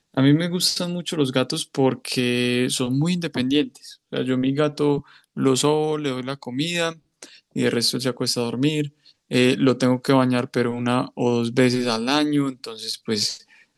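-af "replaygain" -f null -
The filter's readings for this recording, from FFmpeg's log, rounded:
track_gain = +1.5 dB
track_peak = 0.447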